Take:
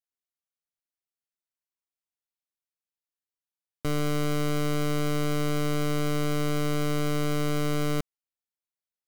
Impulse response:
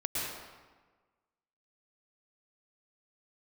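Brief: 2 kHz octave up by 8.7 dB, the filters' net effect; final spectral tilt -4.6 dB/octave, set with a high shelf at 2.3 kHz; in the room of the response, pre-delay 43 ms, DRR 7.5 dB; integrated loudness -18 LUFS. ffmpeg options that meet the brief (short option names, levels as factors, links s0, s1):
-filter_complex "[0:a]equalizer=f=2000:t=o:g=8.5,highshelf=f=2300:g=4.5,asplit=2[s0][s1];[1:a]atrim=start_sample=2205,adelay=43[s2];[s1][s2]afir=irnorm=-1:irlink=0,volume=0.211[s3];[s0][s3]amix=inputs=2:normalize=0,volume=2.24"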